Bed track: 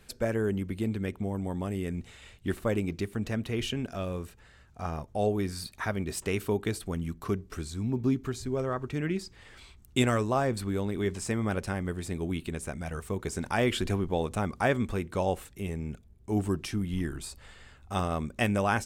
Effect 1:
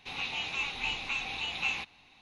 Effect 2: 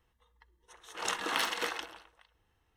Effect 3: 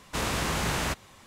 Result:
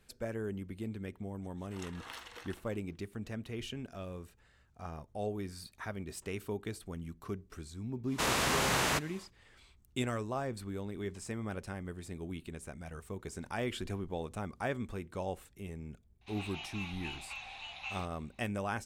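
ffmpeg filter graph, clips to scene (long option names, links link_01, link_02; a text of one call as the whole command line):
ffmpeg -i bed.wav -i cue0.wav -i cue1.wav -i cue2.wav -filter_complex "[0:a]volume=-9.5dB[link_01];[3:a]lowshelf=frequency=160:gain=-11.5[link_02];[1:a]lowshelf=frequency=520:width_type=q:width=3:gain=-7.5[link_03];[2:a]atrim=end=2.76,asetpts=PTS-STARTPTS,volume=-16dB,afade=type=in:duration=0.004:curve=hsin,afade=type=out:start_time=2.756:duration=0.004:curve=hsin,adelay=740[link_04];[link_02]atrim=end=1.26,asetpts=PTS-STARTPTS,afade=type=in:duration=0.1,afade=type=out:start_time=1.16:duration=0.1,adelay=8050[link_05];[link_03]atrim=end=2.21,asetpts=PTS-STARTPTS,volume=-11.5dB,afade=type=in:duration=0.004:curve=hsin,afade=type=out:start_time=2.206:duration=0.004:curve=hsin,adelay=16210[link_06];[link_01][link_04][link_05][link_06]amix=inputs=4:normalize=0" out.wav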